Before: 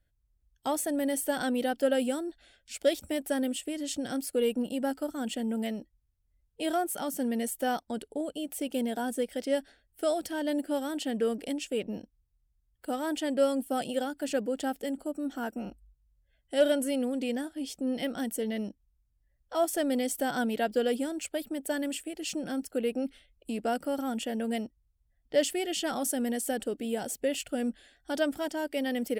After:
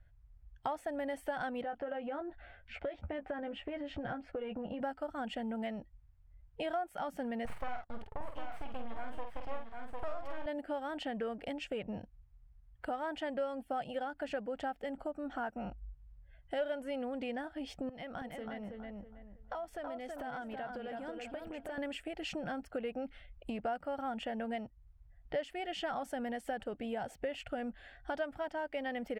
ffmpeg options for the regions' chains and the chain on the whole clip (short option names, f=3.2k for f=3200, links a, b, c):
-filter_complex "[0:a]asettb=1/sr,asplit=3[a][b][c];[a]atrim=end=1.624[d];[b]atrim=start=1.62:end=4.81,asetpts=PTS-STARTPTS,afade=t=in:d=0.004:c=qsin,afade=t=out:st=3.186:d=0.004:c=qsin,lowpass=2.2k,asplit=2[e][f];[f]adelay=14,volume=-7dB[g];[e][g]amix=inputs=2:normalize=0,atrim=end_sample=140679,acompressor=threshold=-33dB:ratio=3:attack=3.2:release=140:knee=1:detection=peak[h];[c]atrim=start=4.806[i];[d][h]acrossfade=d=0.004:c1=hsin:c2=qsin[j];[j][i]acrossfade=d=0.004:c1=qsin:c2=hsin,asettb=1/sr,asplit=3[k][l][m];[k]atrim=end=7.454[n];[l]atrim=start=7.45:end=10.46,asetpts=PTS-STARTPTS,afade=t=in:d=0.004:c=qsin,afade=t=out:st=3.006:d=0.004:c=qsin,aeval=exprs='max(val(0),0)':c=same,asplit=2[o][p];[p]adelay=48,volume=-6dB[q];[o][q]amix=inputs=2:normalize=0,atrim=end_sample=132741,aecho=1:1:753:0.447,atrim=end_sample=132741[r];[m]atrim=start=10.456[s];[n][r]acrossfade=d=0.004:c1=hsin:c2=qsin[t];[t][s]acrossfade=d=0.004:c1=qsin:c2=hsin,asettb=1/sr,asplit=3[u][v][w];[u]atrim=end=17.894[x];[v]atrim=start=17.89:end=21.78,asetpts=PTS-STARTPTS,afade=t=in:d=0.004:c=qsin,afade=t=out:st=3.886:d=0.004:c=qsin,acompressor=threshold=-42dB:ratio=8:attack=3.2:release=140:knee=1:detection=peak,asplit=2[y][z];[z]adelay=324,lowpass=f=2.4k:p=1,volume=-4dB,asplit=2[aa][ab];[ab]adelay=324,lowpass=f=2.4k:p=1,volume=0.3,asplit=2[ac][ad];[ad]adelay=324,lowpass=f=2.4k:p=1,volume=0.3,asplit=2[ae][af];[af]adelay=324,lowpass=f=2.4k:p=1,volume=0.3[ag];[y][aa][ac][ae][ag]amix=inputs=5:normalize=0,atrim=end_sample=171549[ah];[w]atrim=start=21.776[ai];[x][ah]acrossfade=d=0.004:c1=hsin:c2=qsin[aj];[aj][ai]acrossfade=d=0.004:c1=qsin:c2=hsin,firequalizer=gain_entry='entry(110,0);entry(250,-14);entry(370,-14);entry(720,-2);entry(1000,-3);entry(2100,-6);entry(3700,-16);entry(7000,-26);entry(10000,-30)':delay=0.05:min_phase=1,acompressor=threshold=-52dB:ratio=3,volume=13dB"